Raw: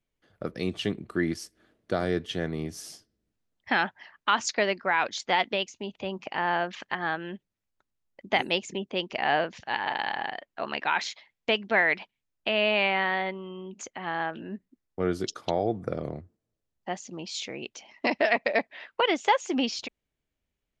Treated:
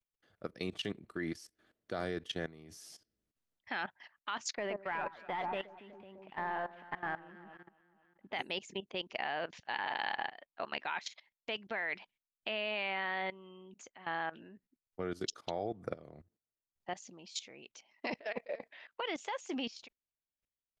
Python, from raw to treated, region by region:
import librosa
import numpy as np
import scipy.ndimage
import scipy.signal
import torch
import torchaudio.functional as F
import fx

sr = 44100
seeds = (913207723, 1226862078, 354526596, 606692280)

y = fx.chain(x, sr, fx.cvsd(bps=64000),
    fx.air_absorb(metres=480.0),
    fx.echo_alternate(ms=123, hz=1300.0, feedback_pct=63, wet_db=-5), at=(4.55, 8.33))
y = fx.chain(y, sr, fx.peak_eq(hz=480.0, db=11.5, octaves=0.36),
    fx.notch(hz=770.0, q=12.0),
    fx.over_compress(threshold_db=-31.0, ratio=-1.0), at=(18.11, 18.7))
y = fx.low_shelf(y, sr, hz=500.0, db=-5.0)
y = fx.level_steps(y, sr, step_db=17)
y = F.gain(torch.from_numpy(y), -2.5).numpy()